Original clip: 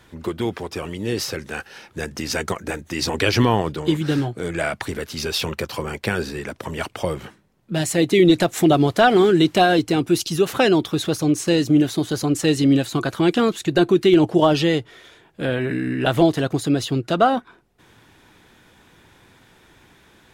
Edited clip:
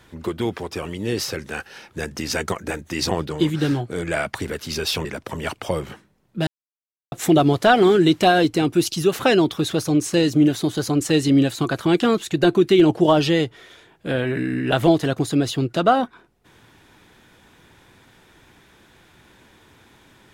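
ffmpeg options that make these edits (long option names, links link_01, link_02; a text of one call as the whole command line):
ffmpeg -i in.wav -filter_complex "[0:a]asplit=5[link_01][link_02][link_03][link_04][link_05];[link_01]atrim=end=3.112[link_06];[link_02]atrim=start=3.578:end=5.522[link_07];[link_03]atrim=start=6.388:end=7.81,asetpts=PTS-STARTPTS,afade=type=out:start_time=1.418:duration=0.004:curve=hsin[link_08];[link_04]atrim=start=7.81:end=8.46,asetpts=PTS-STARTPTS,volume=0[link_09];[link_05]atrim=start=8.46,asetpts=PTS-STARTPTS,afade=type=in:duration=0.004:curve=hsin[link_10];[link_06][link_07]acrossfade=duration=0.004:curve1=hsin:curve2=hsin[link_11];[link_08][link_09][link_10]concat=n=3:v=0:a=1[link_12];[link_11][link_12]acrossfade=duration=0.004:curve1=hsin:curve2=hsin" out.wav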